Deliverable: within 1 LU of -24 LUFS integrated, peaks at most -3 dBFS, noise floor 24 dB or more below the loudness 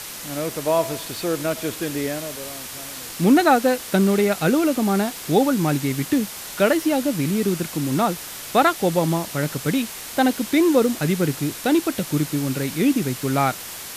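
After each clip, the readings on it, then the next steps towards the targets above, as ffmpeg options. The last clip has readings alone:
noise floor -35 dBFS; noise floor target -46 dBFS; loudness -21.5 LUFS; peak -4.5 dBFS; loudness target -24.0 LUFS
-> -af "afftdn=nr=11:nf=-35"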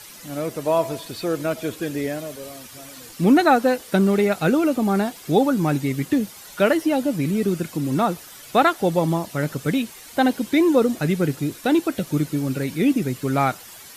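noise floor -42 dBFS; noise floor target -46 dBFS
-> -af "afftdn=nr=6:nf=-42"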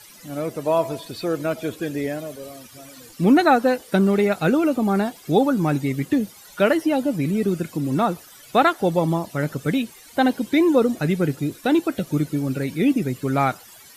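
noise floor -46 dBFS; loudness -21.5 LUFS; peak -5.0 dBFS; loudness target -24.0 LUFS
-> -af "volume=-2.5dB"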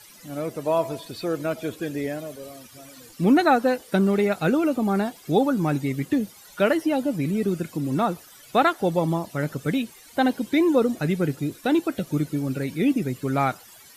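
loudness -24.0 LUFS; peak -7.5 dBFS; noise floor -49 dBFS

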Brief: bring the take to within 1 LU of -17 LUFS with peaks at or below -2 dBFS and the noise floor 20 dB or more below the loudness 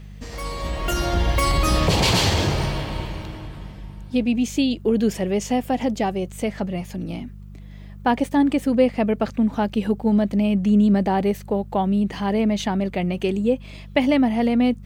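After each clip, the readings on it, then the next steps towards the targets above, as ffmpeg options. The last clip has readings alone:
hum 50 Hz; harmonics up to 200 Hz; hum level -36 dBFS; loudness -21.5 LUFS; peak -5.5 dBFS; loudness target -17.0 LUFS
-> -af "bandreject=f=50:t=h:w=4,bandreject=f=100:t=h:w=4,bandreject=f=150:t=h:w=4,bandreject=f=200:t=h:w=4"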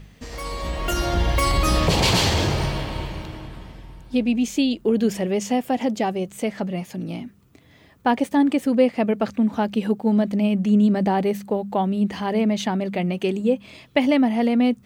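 hum none; loudness -22.0 LUFS; peak -5.5 dBFS; loudness target -17.0 LUFS
-> -af "volume=5dB,alimiter=limit=-2dB:level=0:latency=1"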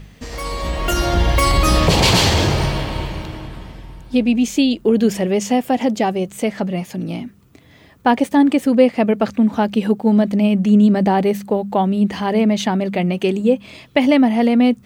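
loudness -17.0 LUFS; peak -2.0 dBFS; noise floor -47 dBFS

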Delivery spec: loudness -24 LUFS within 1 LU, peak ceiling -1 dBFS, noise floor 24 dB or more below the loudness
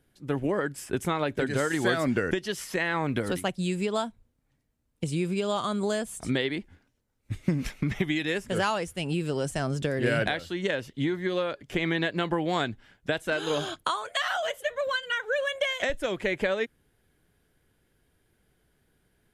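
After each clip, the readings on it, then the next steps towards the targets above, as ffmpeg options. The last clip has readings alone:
loudness -29.0 LUFS; peak -12.0 dBFS; loudness target -24.0 LUFS
-> -af "volume=5dB"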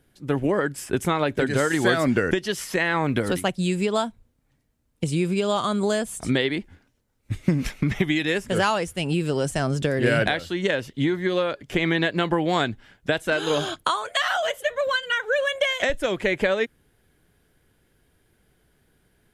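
loudness -24.0 LUFS; peak -7.0 dBFS; noise floor -67 dBFS

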